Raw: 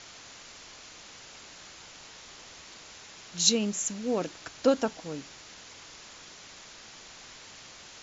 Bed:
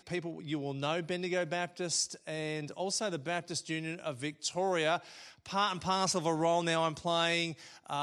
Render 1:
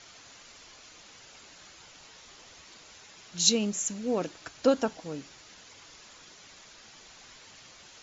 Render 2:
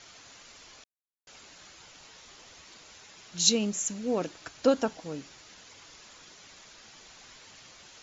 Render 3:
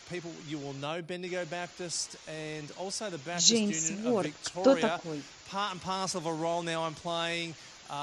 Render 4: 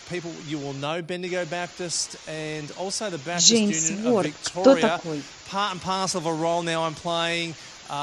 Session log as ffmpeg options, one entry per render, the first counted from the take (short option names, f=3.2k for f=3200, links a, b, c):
-af "afftdn=nr=6:nf=-49"
-filter_complex "[0:a]asplit=3[a][b][c];[a]atrim=end=0.84,asetpts=PTS-STARTPTS,afade=t=out:st=0.836:d=0.004:c=hsin[d];[b]atrim=start=0.84:end=1.27,asetpts=PTS-STARTPTS,volume=0[e];[c]atrim=start=1.27,asetpts=PTS-STARTPTS,afade=t=in:d=0.004:c=hsin[f];[d][e][f]concat=n=3:v=0:a=1"
-filter_complex "[1:a]volume=-2.5dB[a];[0:a][a]amix=inputs=2:normalize=0"
-af "volume=7.5dB,alimiter=limit=-1dB:level=0:latency=1"